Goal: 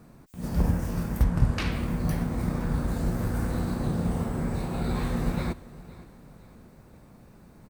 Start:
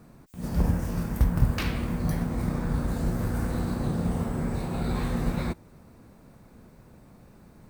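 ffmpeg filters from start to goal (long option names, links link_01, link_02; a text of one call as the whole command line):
ffmpeg -i in.wav -filter_complex "[0:a]asettb=1/sr,asplit=3[link_01][link_02][link_03];[link_01]atrim=end=1.234[link_04];[link_02]atrim=start=1.23:end=1.72,asetpts=PTS-STARTPTS,afade=type=in:duration=0.004:curve=qsin,afade=type=out:start_time=0.486:duration=0.004:curve=qsin,lowpass=9000[link_05];[link_03]atrim=start=1.716[link_06];[link_04][link_05]acrossfade=duration=0.004:curve1=hsin:curve2=qsin[link_07];[link_07][link_06]acrossfade=duration=0.004:curve1=qsin:curve2=hsin,asplit=2[link_08][link_09];[link_09]aecho=0:1:514|1028|1542|2056:0.106|0.0487|0.0224|0.0103[link_10];[link_08][link_10]amix=inputs=2:normalize=0" out.wav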